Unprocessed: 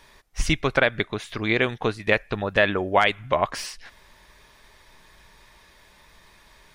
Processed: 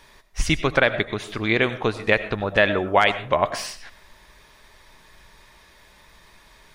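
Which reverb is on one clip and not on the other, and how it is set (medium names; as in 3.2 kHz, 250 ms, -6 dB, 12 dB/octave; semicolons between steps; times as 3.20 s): algorithmic reverb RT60 0.5 s, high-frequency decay 0.45×, pre-delay 55 ms, DRR 12.5 dB; trim +1.5 dB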